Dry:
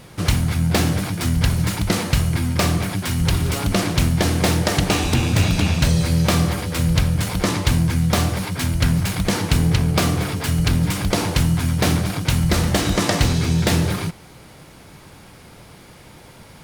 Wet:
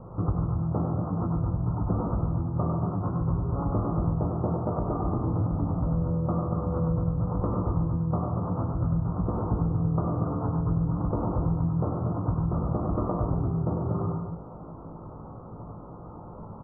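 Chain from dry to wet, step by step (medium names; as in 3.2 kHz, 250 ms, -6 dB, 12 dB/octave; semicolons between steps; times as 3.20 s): steep low-pass 1.3 kHz 96 dB/octave; de-hum 77.29 Hz, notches 30; compression 6:1, threshold -27 dBFS, peak gain reduction 14 dB; doubling 18 ms -6 dB; loudspeakers at several distances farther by 34 m -4 dB, 50 m -9 dB, 82 m -8 dB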